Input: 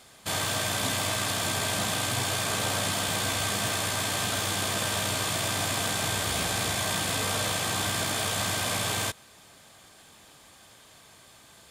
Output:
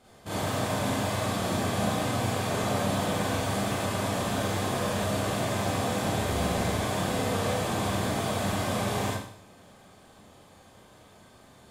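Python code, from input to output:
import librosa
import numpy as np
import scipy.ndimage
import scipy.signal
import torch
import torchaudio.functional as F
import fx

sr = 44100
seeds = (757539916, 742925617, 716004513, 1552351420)

y = fx.tilt_shelf(x, sr, db=7.5, hz=1300.0)
y = fx.rev_schroeder(y, sr, rt60_s=0.58, comb_ms=30, drr_db=-6.5)
y = F.gain(torch.from_numpy(y), -8.0).numpy()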